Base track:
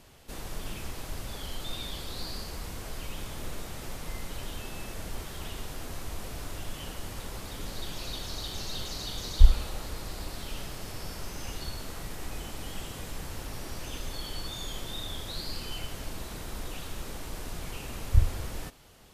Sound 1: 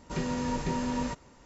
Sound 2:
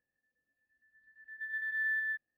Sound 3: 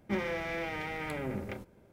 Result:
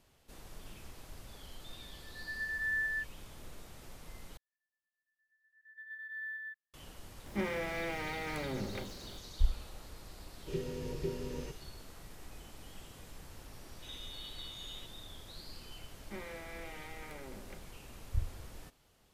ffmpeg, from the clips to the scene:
ffmpeg -i bed.wav -i cue0.wav -i cue1.wav -i cue2.wav -filter_complex "[2:a]asplit=2[link_01][link_02];[3:a]asplit=2[link_03][link_04];[1:a]asplit=2[link_05][link_06];[0:a]volume=-12.5dB[link_07];[link_02]highpass=1200[link_08];[link_03]aeval=exprs='val(0)+0.5*0.00501*sgn(val(0))':channel_layout=same[link_09];[link_05]firequalizer=gain_entry='entry(150,0);entry(220,-14);entry(390,9);entry(690,-18);entry(2800,-4);entry(7700,-12)':delay=0.05:min_phase=1[link_10];[link_06]lowpass=frequency=3300:width_type=q:width=0.5098,lowpass=frequency=3300:width_type=q:width=0.6013,lowpass=frequency=3300:width_type=q:width=0.9,lowpass=frequency=3300:width_type=q:width=2.563,afreqshift=-3900[link_11];[link_04]lowshelf=frequency=150:gain=-10.5[link_12];[link_07]asplit=2[link_13][link_14];[link_13]atrim=end=4.374[link_15];[link_08]atrim=end=2.37,asetpts=PTS-STARTPTS,volume=-8.5dB[link_16];[link_14]atrim=start=6.736[link_17];[link_01]atrim=end=2.37,asetpts=PTS-STARTPTS,volume=-1dB,afade=type=in:duration=0.004:curve=hsin,afade=type=out:start_time=2.366:duration=0.004:curve=hsin,adelay=870[link_18];[link_09]atrim=end=1.92,asetpts=PTS-STARTPTS,volume=-3dB,afade=type=in:duration=0.004:curve=hsin,afade=type=out:start_time=1.916:duration=0.004:curve=hsin,adelay=7260[link_19];[link_10]atrim=end=1.45,asetpts=PTS-STARTPTS,volume=-5dB,afade=type=in:duration=0.004:curve=hsin,afade=type=out:start_time=1.446:duration=0.004:curve=hsin,adelay=10370[link_20];[link_11]atrim=end=1.45,asetpts=PTS-STARTPTS,volume=-18dB,afade=type=in:duration=0.004:curve=hsin,afade=type=out:start_time=1.446:duration=0.004:curve=hsin,adelay=13720[link_21];[link_12]atrim=end=1.92,asetpts=PTS-STARTPTS,volume=-11dB,afade=type=in:duration=0.004:curve=hsin,afade=type=out:start_time=1.916:duration=0.004:curve=hsin,adelay=16010[link_22];[link_15][link_16]acrossfade=duration=0.004:curve1=hsin:curve2=hsin[link_23];[link_23][link_17]acrossfade=duration=0.004:curve1=hsin:curve2=hsin[link_24];[link_24][link_18][link_19][link_20][link_21][link_22]amix=inputs=6:normalize=0" out.wav

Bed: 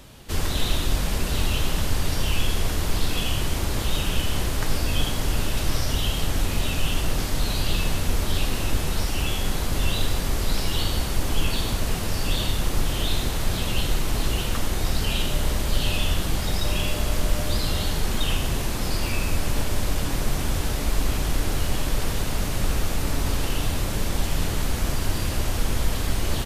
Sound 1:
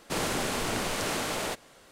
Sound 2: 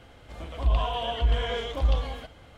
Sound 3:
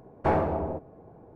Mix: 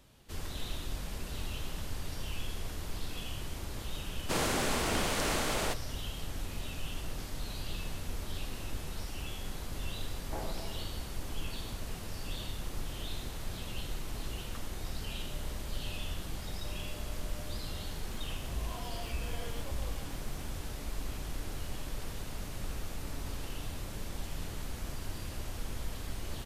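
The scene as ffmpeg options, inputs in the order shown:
ffmpeg -i bed.wav -i cue0.wav -i cue1.wav -i cue2.wav -filter_complex "[0:a]volume=-15dB[link_01];[2:a]aeval=exprs='val(0)+0.5*0.01*sgn(val(0))':channel_layout=same[link_02];[1:a]atrim=end=1.91,asetpts=PTS-STARTPTS,volume=-1.5dB,afade=type=in:duration=0.004:curve=hsin,afade=type=out:start_time=1.906:duration=0.004:curve=hsin,adelay=4190[link_03];[3:a]atrim=end=1.35,asetpts=PTS-STARTPTS,volume=-17.5dB,afade=type=in:duration=0.004:curve=hsin,afade=type=out:start_time=1.346:duration=0.004:curve=hsin,adelay=10070[link_04];[link_02]atrim=end=2.57,asetpts=PTS-STARTPTS,volume=-16.5dB,afade=type=in:duration=0.004:curve=hsin,afade=type=out:start_time=2.566:duration=0.004:curve=hsin,adelay=17900[link_05];[link_01][link_03][link_04][link_05]amix=inputs=4:normalize=0" out.wav

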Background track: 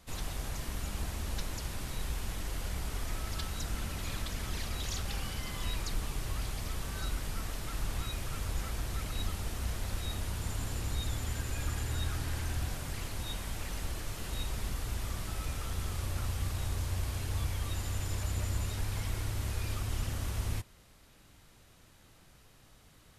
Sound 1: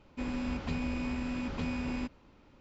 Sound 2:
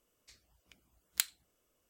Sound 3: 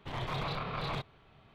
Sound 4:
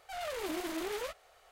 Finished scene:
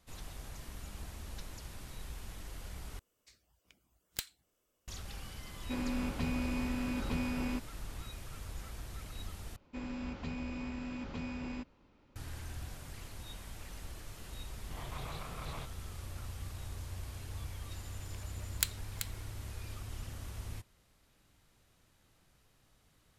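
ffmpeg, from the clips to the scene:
ffmpeg -i bed.wav -i cue0.wav -i cue1.wav -i cue2.wav -filter_complex "[2:a]asplit=2[link_01][link_02];[1:a]asplit=2[link_03][link_04];[0:a]volume=-9dB[link_05];[link_01]aeval=exprs='(tanh(14.1*val(0)+0.5)-tanh(0.5))/14.1':channel_layout=same[link_06];[link_02]aecho=1:1:384:0.376[link_07];[link_05]asplit=3[link_08][link_09][link_10];[link_08]atrim=end=2.994[link_11];[link_06]atrim=end=1.89,asetpts=PTS-STARTPTS,volume=-0.5dB[link_12];[link_09]atrim=start=4.876:end=9.564[link_13];[link_04]atrim=end=2.6,asetpts=PTS-STARTPTS,volume=-6dB[link_14];[link_10]atrim=start=12.156[link_15];[link_03]atrim=end=2.6,asetpts=PTS-STARTPTS,volume=-1dB,afade=type=in:duration=0.004:curve=hsin,afade=type=out:start_time=2.596:duration=0.004:curve=hsin,adelay=5520[link_16];[3:a]atrim=end=1.54,asetpts=PTS-STARTPTS,volume=-9.5dB,afade=type=in:duration=0.004:curve=hsin,afade=type=out:start_time=1.536:duration=0.004:curve=hsin,adelay=14640[link_17];[link_07]atrim=end=1.89,asetpts=PTS-STARTPTS,volume=-1dB,afade=type=in:duration=0.004:curve=hsin,afade=type=out:start_time=1.886:duration=0.004:curve=hsin,adelay=17430[link_18];[link_11][link_12]acrossfade=duration=0.004:curve1=hsin:curve2=hsin[link_19];[link_19][link_13]acrossfade=duration=0.004:curve1=hsin:curve2=hsin[link_20];[link_20][link_14]acrossfade=duration=0.004:curve1=hsin:curve2=hsin[link_21];[link_21][link_15]acrossfade=duration=0.004:curve1=hsin:curve2=hsin[link_22];[link_22][link_16][link_17][link_18]amix=inputs=4:normalize=0" out.wav

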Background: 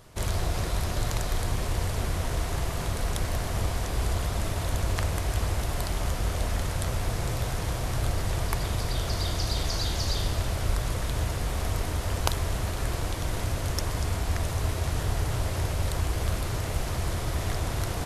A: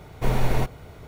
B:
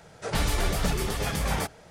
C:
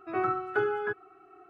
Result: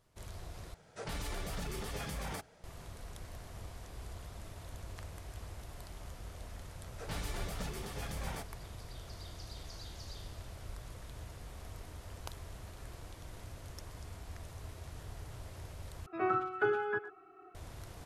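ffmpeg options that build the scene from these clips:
ffmpeg -i bed.wav -i cue0.wav -i cue1.wav -i cue2.wav -filter_complex "[2:a]asplit=2[link_01][link_02];[0:a]volume=-19dB[link_03];[link_01]alimiter=limit=-20.5dB:level=0:latency=1:release=24[link_04];[3:a]asplit=2[link_05][link_06];[link_06]adelay=110,highpass=300,lowpass=3400,asoftclip=type=hard:threshold=-23dB,volume=-13dB[link_07];[link_05][link_07]amix=inputs=2:normalize=0[link_08];[link_03]asplit=3[link_09][link_10][link_11];[link_09]atrim=end=0.744[link_12];[link_04]atrim=end=1.9,asetpts=PTS-STARTPTS,volume=-10.5dB[link_13];[link_10]atrim=start=2.636:end=16.064[link_14];[link_08]atrim=end=1.49,asetpts=PTS-STARTPTS,volume=-3dB[link_15];[link_11]atrim=start=17.546[link_16];[link_02]atrim=end=1.9,asetpts=PTS-STARTPTS,volume=-14dB,afade=type=in:duration=0.004:curve=hsin,afade=type=out:start_time=1.896:duration=0.004:curve=hsin,adelay=6760[link_17];[link_12][link_13]acrossfade=duration=0.004:curve1=hsin:curve2=hsin[link_18];[link_18][link_14]acrossfade=duration=0.004:curve1=hsin:curve2=hsin[link_19];[link_19][link_15]acrossfade=duration=0.004:curve1=hsin:curve2=hsin[link_20];[link_20][link_16]acrossfade=duration=0.004:curve1=hsin:curve2=hsin[link_21];[link_21][link_17]amix=inputs=2:normalize=0" out.wav

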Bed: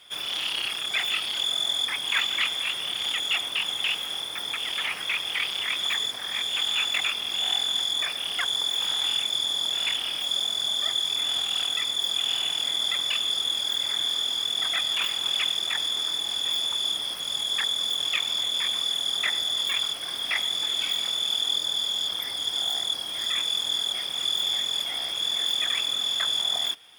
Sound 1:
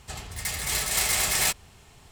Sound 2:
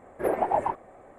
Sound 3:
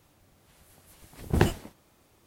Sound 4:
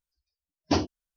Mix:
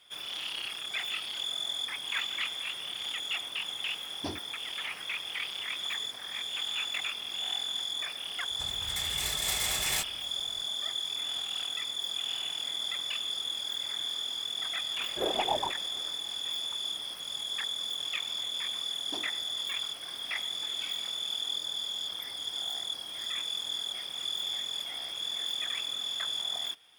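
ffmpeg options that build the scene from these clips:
ffmpeg -i bed.wav -i cue0.wav -i cue1.wav -i cue2.wav -i cue3.wav -filter_complex "[4:a]asplit=2[link_01][link_02];[0:a]volume=-8dB[link_03];[link_02]highpass=270[link_04];[link_01]atrim=end=1.16,asetpts=PTS-STARTPTS,volume=-13.5dB,afade=type=in:duration=0.004:curve=hsin,afade=type=out:start_time=1.156:duration=0.004:curve=hsin,adelay=155673S[link_05];[1:a]atrim=end=2.11,asetpts=PTS-STARTPTS,volume=-7.5dB,afade=type=in:duration=0.004:curve=hsin,afade=type=out:start_time=2.106:duration=0.004:curve=hsin,adelay=8510[link_06];[2:a]atrim=end=1.18,asetpts=PTS-STARTPTS,volume=-6dB,afade=type=in:duration=0.004:curve=hsin,afade=type=out:start_time=1.176:duration=0.004:curve=hsin,adelay=14970[link_07];[link_04]atrim=end=1.16,asetpts=PTS-STARTPTS,volume=-17.5dB,afade=type=in:duration=0.004:curve=hsin,afade=type=out:start_time=1.156:duration=0.004:curve=hsin,adelay=18410[link_08];[link_03][link_05][link_06][link_07][link_08]amix=inputs=5:normalize=0" out.wav

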